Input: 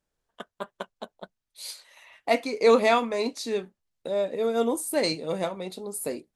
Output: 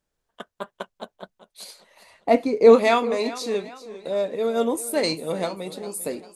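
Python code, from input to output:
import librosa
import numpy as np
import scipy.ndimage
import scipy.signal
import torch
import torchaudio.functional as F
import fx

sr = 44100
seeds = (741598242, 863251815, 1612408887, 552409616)

y = fx.tilt_shelf(x, sr, db=8.0, hz=970.0, at=(1.63, 2.73), fade=0.02)
y = fx.echo_warbled(y, sr, ms=398, feedback_pct=43, rate_hz=2.8, cents=76, wet_db=-16.0)
y = F.gain(torch.from_numpy(y), 2.0).numpy()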